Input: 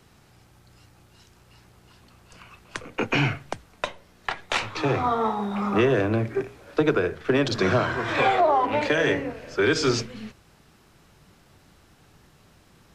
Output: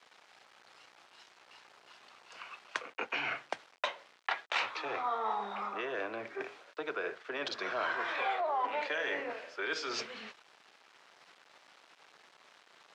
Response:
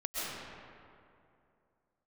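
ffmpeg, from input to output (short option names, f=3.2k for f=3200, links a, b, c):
-af "areverse,acompressor=threshold=-30dB:ratio=8,areverse,aeval=exprs='val(0)*gte(abs(val(0)),0.00224)':c=same,highpass=650,lowpass=4.4k,volume=2dB"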